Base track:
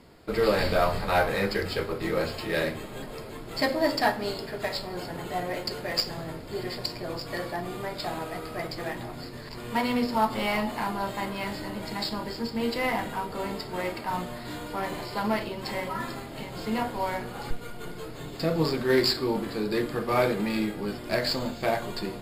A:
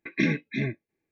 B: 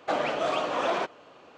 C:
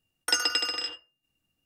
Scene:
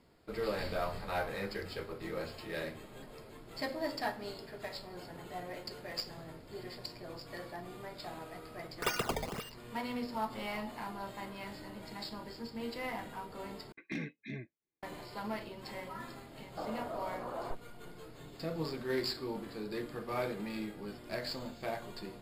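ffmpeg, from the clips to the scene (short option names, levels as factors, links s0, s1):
-filter_complex "[0:a]volume=0.251[s0];[3:a]acrusher=samples=18:mix=1:aa=0.000001:lfo=1:lforange=28.8:lforate=1.9[s1];[1:a]asoftclip=type=hard:threshold=0.141[s2];[2:a]lowpass=f=1300:w=0.5412,lowpass=f=1300:w=1.3066[s3];[s0]asplit=2[s4][s5];[s4]atrim=end=13.724[s6];[s2]atrim=end=1.11,asetpts=PTS-STARTPTS,volume=0.188[s7];[s5]atrim=start=14.826[s8];[s1]atrim=end=1.65,asetpts=PTS-STARTPTS,volume=0.376,afade=t=in:d=0.004:c=hsin,afade=t=out:st=1.646:d=0.004:c=hsin,adelay=8540[s9];[s3]atrim=end=1.57,asetpts=PTS-STARTPTS,volume=0.211,afade=t=in:d=0.004:c=hsin,afade=t=out:st=1.566:d=0.004:c=hsin,adelay=16490[s10];[s6][s7]acrossfade=d=0.004:c1=hsin:c2=hsin[s11];[s11][s8]acrossfade=d=0.004:c1=hsin:c2=hsin[s12];[s12][s9][s10]amix=inputs=3:normalize=0"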